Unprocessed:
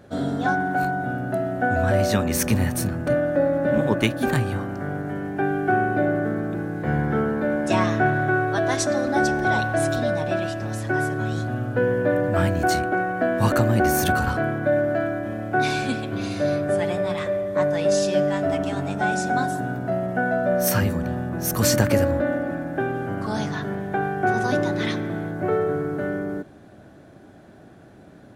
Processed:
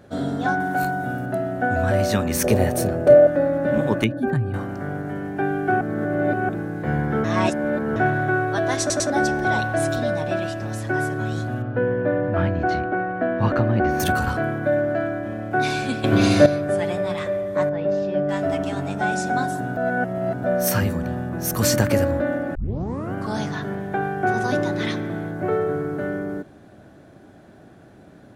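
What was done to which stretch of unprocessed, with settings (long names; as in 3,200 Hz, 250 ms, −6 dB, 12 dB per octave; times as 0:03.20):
0:00.60–0:01.26: high-shelf EQ 5,400 Hz +10.5 dB
0:02.44–0:03.27: flat-topped bell 520 Hz +12 dB 1.2 octaves
0:04.04–0:04.54: expanding power law on the bin magnitudes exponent 1.6
0:05.81–0:06.49: reverse
0:07.24–0:07.96: reverse
0:08.80: stutter in place 0.10 s, 3 plays
0:11.62–0:14.00: high-frequency loss of the air 270 metres
0:14.75–0:15.51: high-shelf EQ 9,200 Hz −8 dB
0:16.04–0:16.46: clip gain +11 dB
0:17.69–0:18.29: head-to-tape spacing loss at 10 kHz 40 dB
0:19.77–0:20.44: reverse
0:22.55: tape start 0.59 s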